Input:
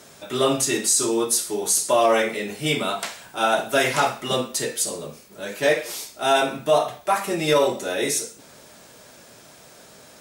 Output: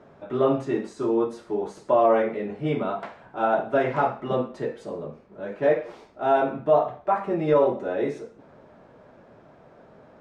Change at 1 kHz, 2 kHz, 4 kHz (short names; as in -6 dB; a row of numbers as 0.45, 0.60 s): -2.0 dB, -9.0 dB, under -20 dB